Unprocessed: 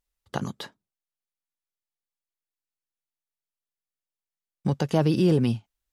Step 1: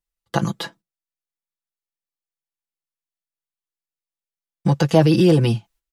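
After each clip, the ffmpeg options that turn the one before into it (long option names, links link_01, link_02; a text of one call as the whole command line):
ffmpeg -i in.wav -filter_complex "[0:a]agate=range=-13dB:threshold=-56dB:ratio=16:detection=peak,aecho=1:1:6:0.83,acrossover=split=400|1100[link_01][link_02][link_03];[link_01]alimiter=limit=-17dB:level=0:latency=1[link_04];[link_04][link_02][link_03]amix=inputs=3:normalize=0,volume=6.5dB" out.wav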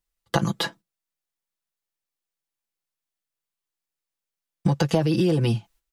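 ffmpeg -i in.wav -af "acompressor=threshold=-22dB:ratio=6,volume=4dB" out.wav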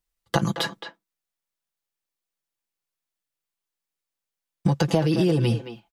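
ffmpeg -i in.wav -filter_complex "[0:a]asplit=2[link_01][link_02];[link_02]adelay=220,highpass=300,lowpass=3400,asoftclip=type=hard:threshold=-16dB,volume=-9dB[link_03];[link_01][link_03]amix=inputs=2:normalize=0" out.wav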